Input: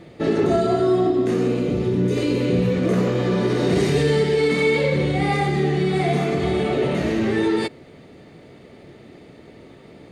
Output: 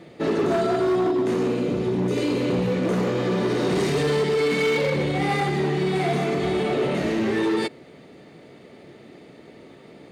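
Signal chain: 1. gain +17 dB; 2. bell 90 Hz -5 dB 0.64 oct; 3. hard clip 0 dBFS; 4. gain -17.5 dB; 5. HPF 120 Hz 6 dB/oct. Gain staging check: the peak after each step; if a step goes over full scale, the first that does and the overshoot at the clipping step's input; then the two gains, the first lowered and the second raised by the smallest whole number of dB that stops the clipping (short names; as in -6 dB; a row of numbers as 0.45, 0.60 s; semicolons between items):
+7.5, +7.5, 0.0, -17.5, -14.0 dBFS; step 1, 7.5 dB; step 1 +9 dB, step 4 -9.5 dB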